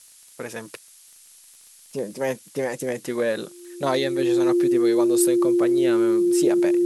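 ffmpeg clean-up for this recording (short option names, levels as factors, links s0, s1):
-af "adeclick=t=4,bandreject=f=350:w=30,afftdn=nr=17:nf=-50"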